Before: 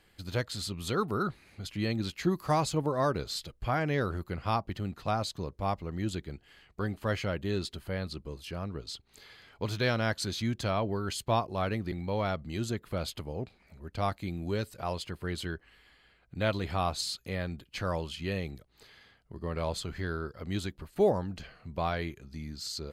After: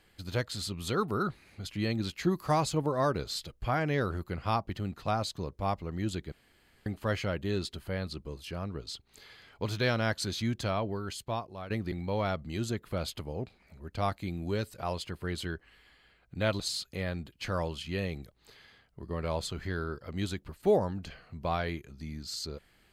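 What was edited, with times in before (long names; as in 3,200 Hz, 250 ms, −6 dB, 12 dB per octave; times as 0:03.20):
0:06.32–0:06.86: fill with room tone
0:10.54–0:11.70: fade out, to −12.5 dB
0:16.60–0:16.93: remove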